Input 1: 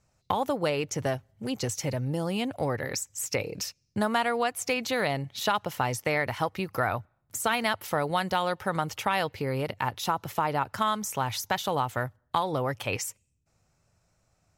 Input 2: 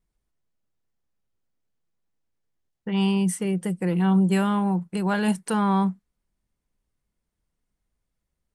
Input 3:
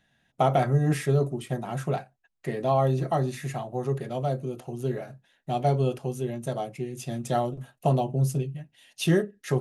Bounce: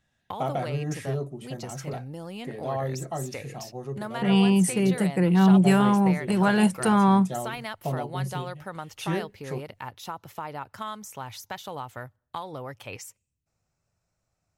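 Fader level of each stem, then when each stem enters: −8.5, +2.5, −7.0 decibels; 0.00, 1.35, 0.00 seconds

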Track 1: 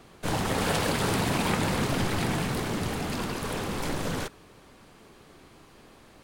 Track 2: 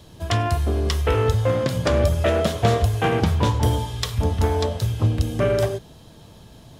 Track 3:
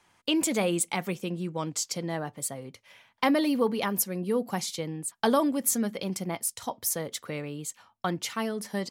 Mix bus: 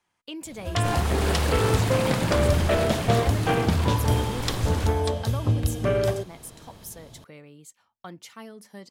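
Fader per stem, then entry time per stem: −1.0, −3.0, −11.5 decibels; 0.60, 0.45, 0.00 seconds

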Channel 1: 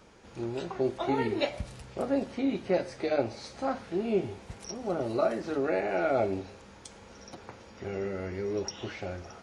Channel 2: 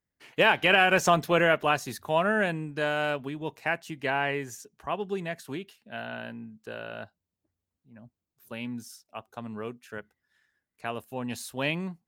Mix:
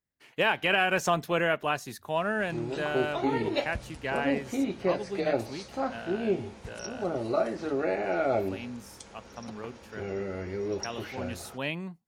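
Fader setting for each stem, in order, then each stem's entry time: 0.0, −4.0 decibels; 2.15, 0.00 seconds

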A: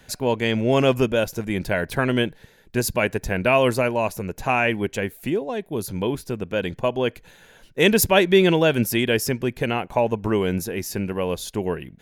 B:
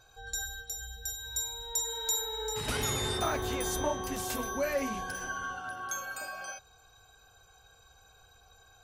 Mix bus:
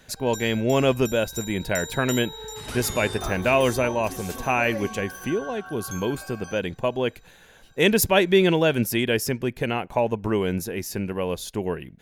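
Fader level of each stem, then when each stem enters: −2.0, −2.0 decibels; 0.00, 0.00 seconds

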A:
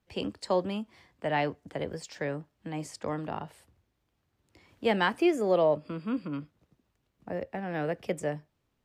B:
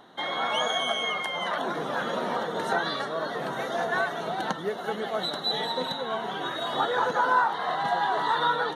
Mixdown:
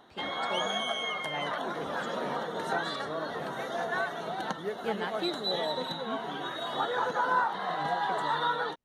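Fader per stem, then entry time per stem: −10.5, −4.5 decibels; 0.00, 0.00 seconds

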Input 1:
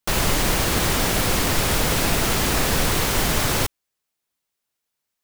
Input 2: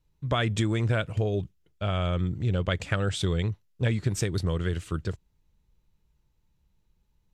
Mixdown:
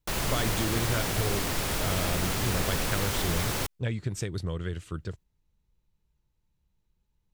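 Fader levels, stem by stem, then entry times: −9.0, −5.0 decibels; 0.00, 0.00 seconds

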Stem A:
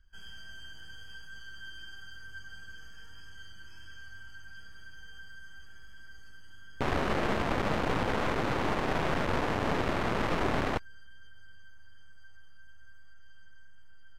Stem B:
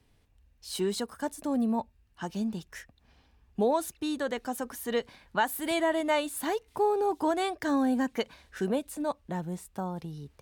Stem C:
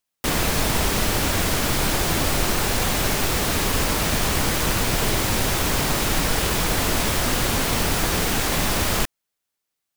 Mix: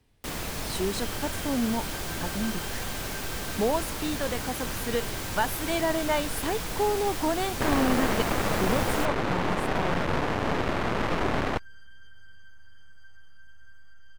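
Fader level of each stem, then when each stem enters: +2.5, 0.0, −12.0 decibels; 0.80, 0.00, 0.00 seconds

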